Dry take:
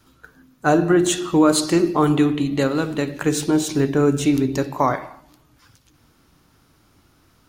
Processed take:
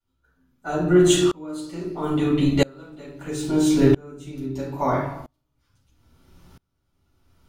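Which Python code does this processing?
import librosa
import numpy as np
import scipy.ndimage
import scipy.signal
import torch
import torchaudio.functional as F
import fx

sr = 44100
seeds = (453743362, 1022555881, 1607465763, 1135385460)

y = fx.room_shoebox(x, sr, seeds[0], volume_m3=310.0, walls='furnished', distance_m=7.0)
y = fx.tremolo_decay(y, sr, direction='swelling', hz=0.76, depth_db=32)
y = y * librosa.db_to_amplitude(-5.5)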